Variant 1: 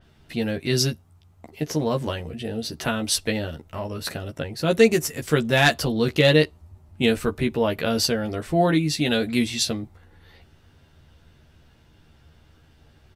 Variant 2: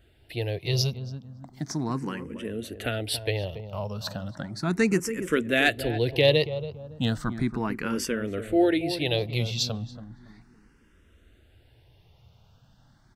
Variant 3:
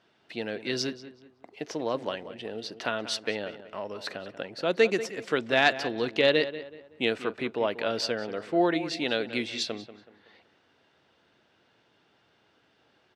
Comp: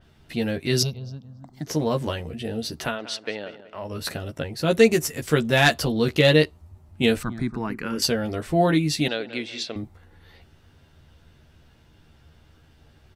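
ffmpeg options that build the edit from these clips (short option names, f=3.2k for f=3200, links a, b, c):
-filter_complex "[1:a]asplit=2[a][b];[2:a]asplit=2[c][d];[0:a]asplit=5[e][f][g][h][i];[e]atrim=end=0.832[j];[a]atrim=start=0.828:end=1.672[k];[f]atrim=start=1.668:end=3.03[l];[c]atrim=start=2.79:end=3.96[m];[g]atrim=start=3.72:end=7.232[n];[b]atrim=start=7.228:end=8.022[o];[h]atrim=start=8.018:end=9.082[p];[d]atrim=start=9.078:end=9.762[q];[i]atrim=start=9.758[r];[j][k]acrossfade=d=0.004:c1=hsin:c2=hsin[s];[s][l]acrossfade=d=0.004:c1=hsin:c2=hsin[t];[t][m]acrossfade=d=0.24:c1=tri:c2=tri[u];[u][n]acrossfade=d=0.24:c1=tri:c2=tri[v];[v][o]acrossfade=d=0.004:c1=hsin:c2=hsin[w];[w][p]acrossfade=d=0.004:c1=hsin:c2=hsin[x];[x][q]acrossfade=d=0.004:c1=hsin:c2=hsin[y];[y][r]acrossfade=d=0.004:c1=hsin:c2=hsin"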